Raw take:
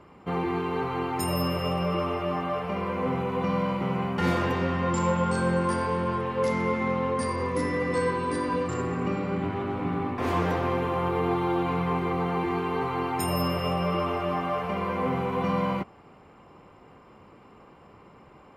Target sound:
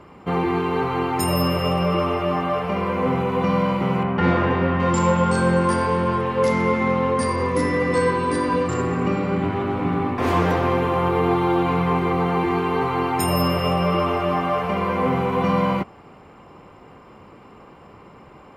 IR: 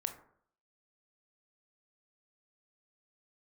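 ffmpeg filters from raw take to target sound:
-filter_complex "[0:a]asettb=1/sr,asplit=3[a][b][c];[a]atrim=end=4.034[d];[b]atrim=start=4.03:end=4.8,asetpts=PTS-STARTPTS,afade=t=in:d=0.004:c=qsin,afade=t=out:st=0.766:d=0.004:c=qsin,lowpass=2.6k[e];[c]atrim=start=4.796[f];[d][e]acrossfade=d=0.004:c1=hsin:c2=qsin[g];[g][f]acrossfade=d=0.004:c1=qsin:c2=hsin,volume=6.5dB"

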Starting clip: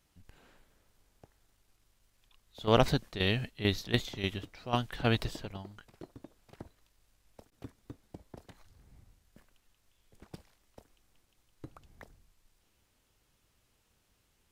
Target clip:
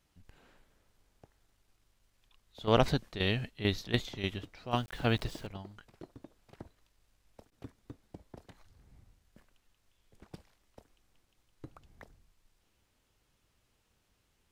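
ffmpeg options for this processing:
-filter_complex "[0:a]highshelf=f=7.7k:g=-5,asettb=1/sr,asplit=3[a][b][c];[a]atrim=end=4.714[d];[b]atrim=start=4.71:end=5.47,asetpts=PTS-STARTPTS,afade=t=in:d=0.004:c=qsin,afade=t=out:st=0.756:d=0.004:c=qsin,aeval=exprs='val(0)*gte(abs(val(0)),0.00355)':c=same[e];[c]atrim=start=5.466[f];[d][e]acrossfade=d=0.004:c1=hsin:c2=qsin[g];[g][f]acrossfade=d=0.004:c1=qsin:c2=hsin,volume=-1dB"

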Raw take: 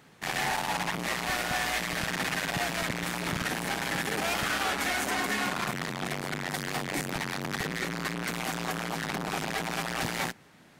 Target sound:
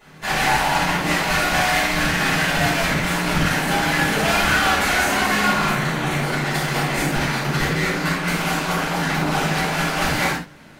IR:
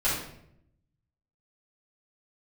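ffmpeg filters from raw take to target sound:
-filter_complex "[0:a]asettb=1/sr,asplit=3[a][b][c];[a]atrim=end=5.684[d];[b]atrim=start=5.68:end=6.22,asetpts=PTS-STARTPTS,afade=t=in:d=0.004:c=qsin,afade=t=out:st=0.536:d=0.004:c=qsin,bandreject=f=5k:w=7[e];[c]atrim=start=6.216[f];[d][e]acrossfade=d=0.004:c1=hsin:c2=qsin[g];[g][f]acrossfade=d=0.004:c1=qsin:c2=hsin[h];[1:a]atrim=start_sample=2205,atrim=end_sample=6615[i];[h][i]afir=irnorm=-1:irlink=0"

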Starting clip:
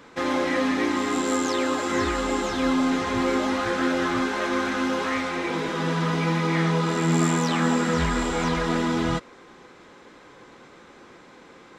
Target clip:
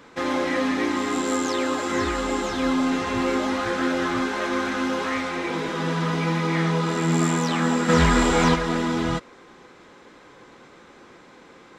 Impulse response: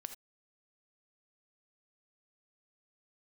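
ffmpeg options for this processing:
-filter_complex "[0:a]asettb=1/sr,asplit=3[a][b][c];[a]atrim=end=2.864[d];[b]atrim=start=2.86:end=3.35,asetpts=PTS-STARTPTS,afade=t=in:d=0.004:c=qsin,afade=t=out:st=0.486:d=0.004:c=qsin,aeval=exprs='val(0)+0.00794*sin(2*PI*2700*n/s)':c=same[e];[c]atrim=start=3.346[f];[d][e]acrossfade=d=0.004:c1=hsin:c2=qsin[g];[g][f]acrossfade=d=0.004:c1=qsin:c2=hsin,asplit=3[h][i][j];[h]afade=t=out:st=7.88:d=0.02[k];[i]acontrast=59,afade=t=in:st=7.88:d=0.02,afade=t=out:st=8.54:d=0.02[l];[j]afade=t=in:st=8.54:d=0.02[m];[k][l][m]amix=inputs=3:normalize=0"

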